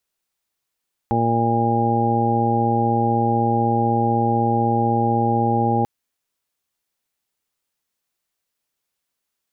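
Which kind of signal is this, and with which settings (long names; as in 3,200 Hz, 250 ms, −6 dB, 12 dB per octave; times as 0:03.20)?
steady harmonic partials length 4.74 s, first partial 116 Hz, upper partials 0/−3/−4/−8/−13/3 dB, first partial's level −22.5 dB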